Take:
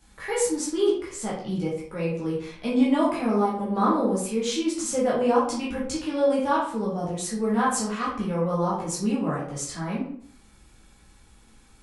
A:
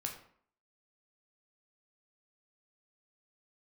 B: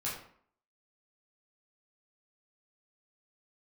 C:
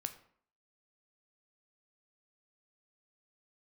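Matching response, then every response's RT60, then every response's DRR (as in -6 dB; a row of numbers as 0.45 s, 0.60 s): B; 0.60 s, 0.60 s, 0.60 s; 1.5 dB, -7.5 dB, 8.0 dB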